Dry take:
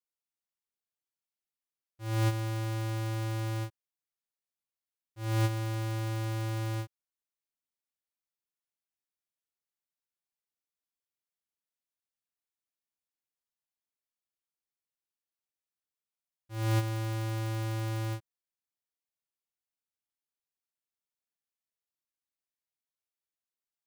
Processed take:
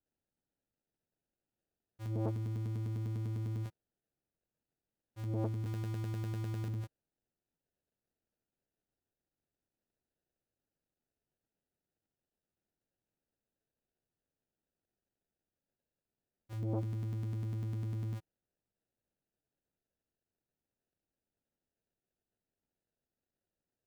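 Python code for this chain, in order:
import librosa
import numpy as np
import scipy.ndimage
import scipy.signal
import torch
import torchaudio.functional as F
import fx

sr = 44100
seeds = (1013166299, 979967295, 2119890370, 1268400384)

y = fx.peak_eq(x, sr, hz=160.0, db=fx.steps((0.0, 3.5), (5.66, -11.5), (6.68, 2.0)), octaves=0.35)
y = fx.sample_hold(y, sr, seeds[0], rate_hz=1100.0, jitter_pct=0)
y = fx.transformer_sat(y, sr, knee_hz=400.0)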